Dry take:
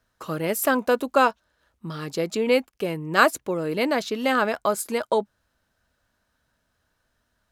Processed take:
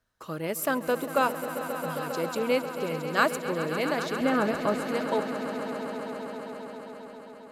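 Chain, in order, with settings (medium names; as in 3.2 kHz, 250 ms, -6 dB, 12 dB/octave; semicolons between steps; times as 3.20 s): 4.21–4.87 s: RIAA curve playback; echo with a slow build-up 134 ms, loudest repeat 5, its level -13 dB; trim -6 dB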